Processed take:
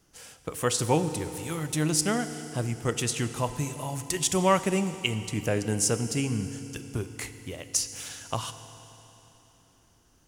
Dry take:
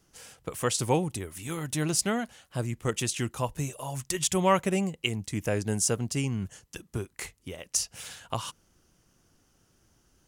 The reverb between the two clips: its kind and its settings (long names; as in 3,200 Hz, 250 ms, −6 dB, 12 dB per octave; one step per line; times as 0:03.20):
feedback delay network reverb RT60 3.5 s, high-frequency decay 1×, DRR 10 dB
level +1 dB